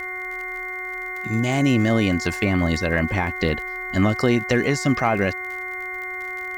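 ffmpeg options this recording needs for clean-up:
-af "adeclick=t=4,bandreject=f=368.2:t=h:w=4,bandreject=f=736.4:t=h:w=4,bandreject=f=1.1046k:t=h:w=4,bandreject=f=1.4728k:t=h:w=4,bandreject=f=1.841k:t=h:w=4,bandreject=f=2.1k:w=30,agate=range=-21dB:threshold=-23dB"

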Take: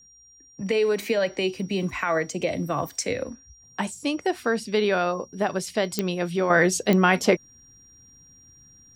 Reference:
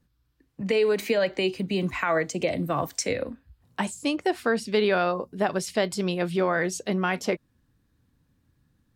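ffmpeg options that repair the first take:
-af "adeclick=t=4,bandreject=f=5.7k:w=30,asetnsamples=n=441:p=0,asendcmd='6.5 volume volume -7dB',volume=0dB"

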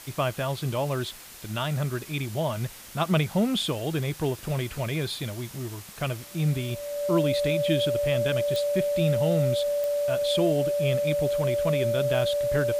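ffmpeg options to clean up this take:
-af "adeclick=t=4,bandreject=f=580:w=30,afwtdn=0.0063"

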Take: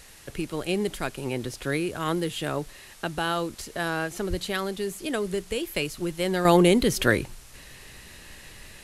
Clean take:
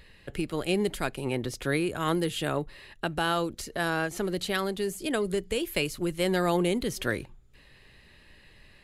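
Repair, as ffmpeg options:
-filter_complex "[0:a]asplit=3[a][b][c];[a]afade=t=out:st=4.29:d=0.02[d];[b]highpass=f=140:w=0.5412,highpass=f=140:w=1.3066,afade=t=in:st=4.29:d=0.02,afade=t=out:st=4.41:d=0.02[e];[c]afade=t=in:st=4.41:d=0.02[f];[d][e][f]amix=inputs=3:normalize=0,afwtdn=0.0035,asetnsamples=n=441:p=0,asendcmd='6.45 volume volume -8dB',volume=0dB"

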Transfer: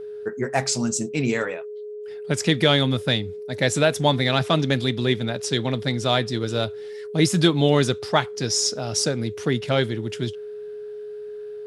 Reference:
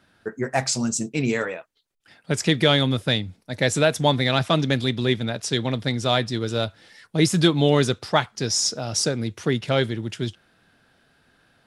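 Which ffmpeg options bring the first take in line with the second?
-af "bandreject=f=420:w=30"

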